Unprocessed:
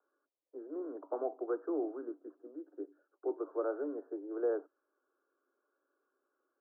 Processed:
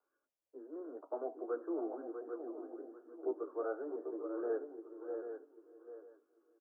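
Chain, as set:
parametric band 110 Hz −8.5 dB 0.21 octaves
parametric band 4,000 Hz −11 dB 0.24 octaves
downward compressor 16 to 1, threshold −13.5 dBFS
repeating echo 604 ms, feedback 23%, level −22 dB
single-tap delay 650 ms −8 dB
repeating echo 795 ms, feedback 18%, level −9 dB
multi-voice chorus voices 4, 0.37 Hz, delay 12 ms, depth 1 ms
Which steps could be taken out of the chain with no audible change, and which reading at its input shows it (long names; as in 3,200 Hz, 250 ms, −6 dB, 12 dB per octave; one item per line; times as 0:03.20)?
parametric band 110 Hz: nothing at its input below 230 Hz
parametric band 4,000 Hz: nothing at its input above 1,500 Hz
downward compressor, threshold −13.5 dBFS: peak of its input −23.0 dBFS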